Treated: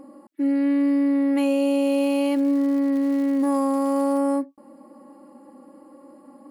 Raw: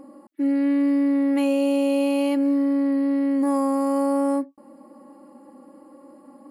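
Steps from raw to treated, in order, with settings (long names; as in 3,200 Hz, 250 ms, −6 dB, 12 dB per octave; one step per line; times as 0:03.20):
0:01.83–0:04.17: surface crackle 260 per second −36 dBFS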